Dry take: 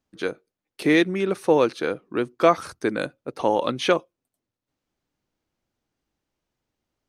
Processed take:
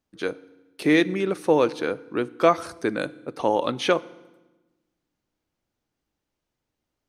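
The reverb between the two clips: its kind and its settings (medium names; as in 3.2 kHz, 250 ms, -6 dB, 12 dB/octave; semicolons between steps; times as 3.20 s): FDN reverb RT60 1.1 s, low-frequency decay 1.45×, high-frequency decay 0.9×, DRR 18 dB; trim -1 dB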